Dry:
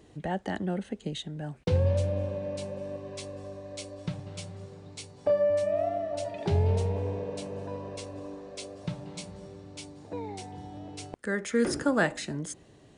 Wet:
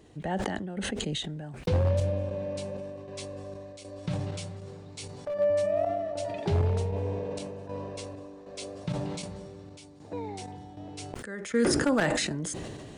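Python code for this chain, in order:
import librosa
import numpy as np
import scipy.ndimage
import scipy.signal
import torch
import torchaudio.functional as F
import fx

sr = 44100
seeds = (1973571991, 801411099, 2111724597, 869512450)

y = np.minimum(x, 2.0 * 10.0 ** (-19.5 / 20.0) - x)
y = fx.chopper(y, sr, hz=1.3, depth_pct=65, duty_pct=60)
y = fx.sustainer(y, sr, db_per_s=25.0)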